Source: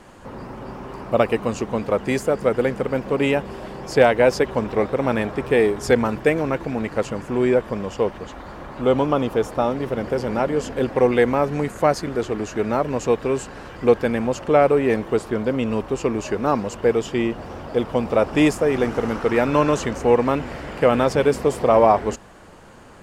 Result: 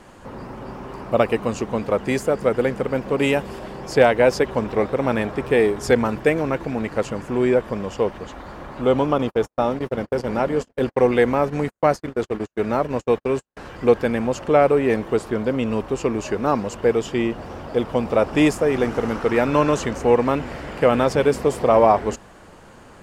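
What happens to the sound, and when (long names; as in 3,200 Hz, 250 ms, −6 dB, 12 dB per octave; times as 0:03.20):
0:03.19–0:03.59: high-shelf EQ 4,900 Hz +7.5 dB
0:09.18–0:13.57: noise gate −27 dBFS, range −54 dB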